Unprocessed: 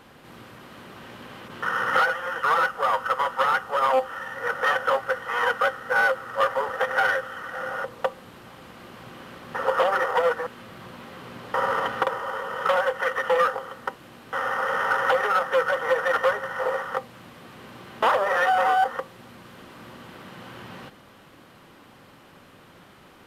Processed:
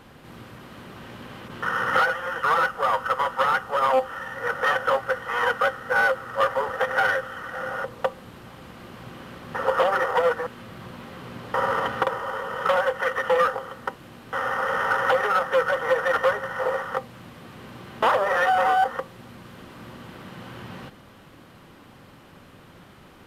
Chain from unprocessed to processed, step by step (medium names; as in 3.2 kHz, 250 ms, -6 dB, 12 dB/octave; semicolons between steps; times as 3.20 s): bass shelf 190 Hz +7.5 dB